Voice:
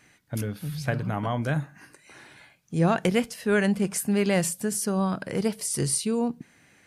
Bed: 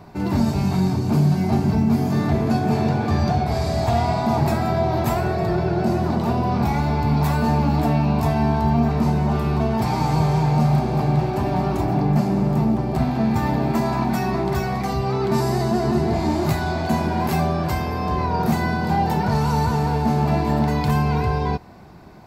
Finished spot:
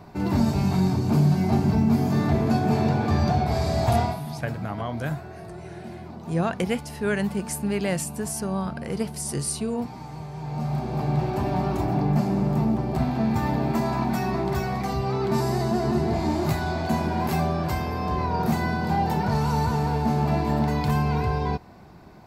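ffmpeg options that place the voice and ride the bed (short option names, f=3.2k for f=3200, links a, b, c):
-filter_complex "[0:a]adelay=3550,volume=-2.5dB[a];[1:a]volume=12.5dB,afade=t=out:st=3.99:d=0.22:silence=0.158489,afade=t=in:st=10.33:d=0.98:silence=0.188365[b];[a][b]amix=inputs=2:normalize=0"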